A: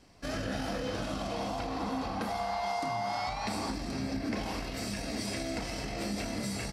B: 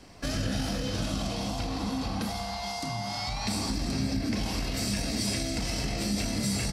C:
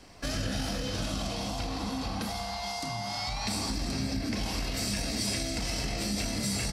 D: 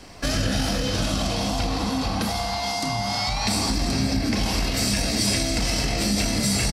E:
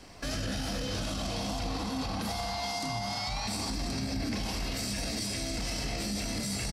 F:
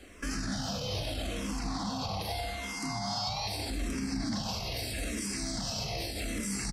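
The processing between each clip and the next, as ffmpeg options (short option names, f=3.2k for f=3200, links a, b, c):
-filter_complex "[0:a]acrossover=split=230|3000[a][b][c];[b]acompressor=threshold=-45dB:ratio=6[d];[a][d][c]amix=inputs=3:normalize=0,volume=8.5dB"
-af "equalizer=f=170:t=o:w=2.7:g=-3.5"
-filter_complex "[0:a]asplit=2[a][b];[b]adelay=932.9,volume=-14dB,highshelf=f=4k:g=-21[c];[a][c]amix=inputs=2:normalize=0,volume=8.5dB"
-af "alimiter=limit=-18.5dB:level=0:latency=1:release=15,volume=-6.5dB"
-filter_complex "[0:a]asplit=2[a][b];[b]afreqshift=-0.8[c];[a][c]amix=inputs=2:normalize=1,volume=2dB"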